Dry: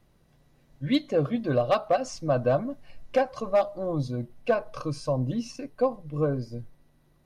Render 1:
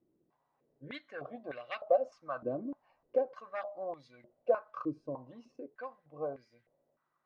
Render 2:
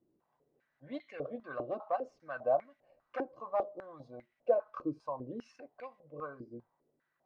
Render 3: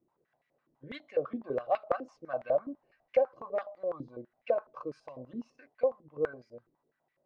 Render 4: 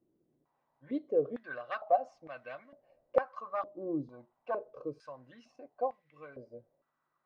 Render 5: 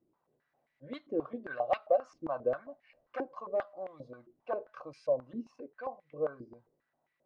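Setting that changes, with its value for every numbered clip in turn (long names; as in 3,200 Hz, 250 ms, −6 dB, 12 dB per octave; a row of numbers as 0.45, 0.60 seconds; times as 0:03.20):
band-pass on a step sequencer, speed: 3.3, 5, 12, 2.2, 7.5 Hertz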